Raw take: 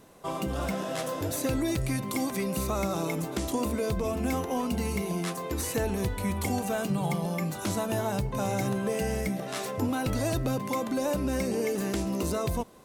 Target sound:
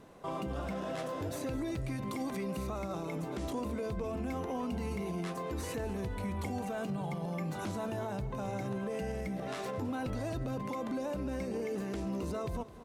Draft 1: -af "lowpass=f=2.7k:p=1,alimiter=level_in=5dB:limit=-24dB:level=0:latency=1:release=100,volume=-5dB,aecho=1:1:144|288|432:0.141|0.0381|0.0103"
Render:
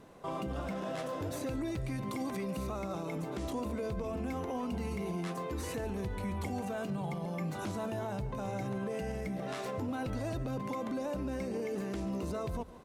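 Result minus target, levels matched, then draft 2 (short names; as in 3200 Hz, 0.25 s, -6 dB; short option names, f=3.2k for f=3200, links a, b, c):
echo 67 ms early
-af "lowpass=f=2.7k:p=1,alimiter=level_in=5dB:limit=-24dB:level=0:latency=1:release=100,volume=-5dB,aecho=1:1:211|422|633:0.141|0.0381|0.0103"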